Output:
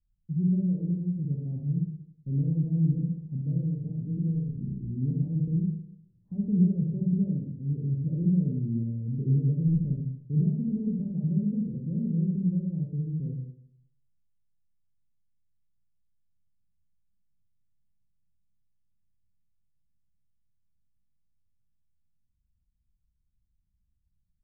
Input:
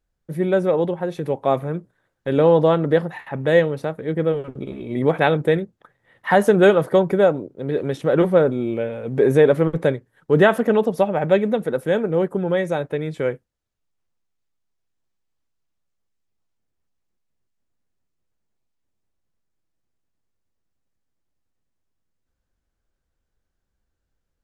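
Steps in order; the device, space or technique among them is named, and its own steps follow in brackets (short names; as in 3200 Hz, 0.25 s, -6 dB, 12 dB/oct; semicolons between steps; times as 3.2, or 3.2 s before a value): 3.54–4.91 doubler 17 ms -4 dB; club heard from the street (limiter -10 dBFS, peak gain reduction 7.5 dB; LPF 180 Hz 24 dB/oct; reverb RT60 0.70 s, pre-delay 33 ms, DRR -2.5 dB)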